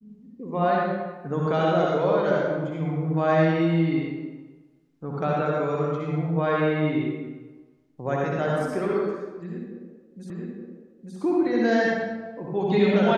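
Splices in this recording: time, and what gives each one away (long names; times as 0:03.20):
0:10.30: the same again, the last 0.87 s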